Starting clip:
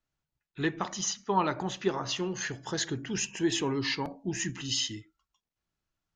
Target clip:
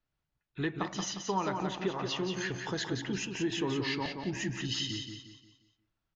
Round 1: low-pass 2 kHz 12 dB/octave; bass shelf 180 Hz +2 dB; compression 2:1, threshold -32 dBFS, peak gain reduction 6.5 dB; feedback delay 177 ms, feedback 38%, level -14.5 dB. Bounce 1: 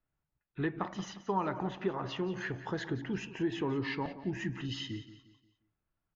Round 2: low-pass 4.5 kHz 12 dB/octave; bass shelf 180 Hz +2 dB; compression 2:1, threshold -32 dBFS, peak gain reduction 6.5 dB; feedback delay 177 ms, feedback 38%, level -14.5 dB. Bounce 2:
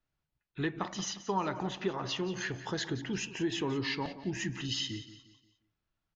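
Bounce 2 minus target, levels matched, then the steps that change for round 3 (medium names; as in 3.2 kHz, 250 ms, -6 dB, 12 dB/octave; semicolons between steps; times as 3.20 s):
echo-to-direct -8.5 dB
change: feedback delay 177 ms, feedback 38%, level -6 dB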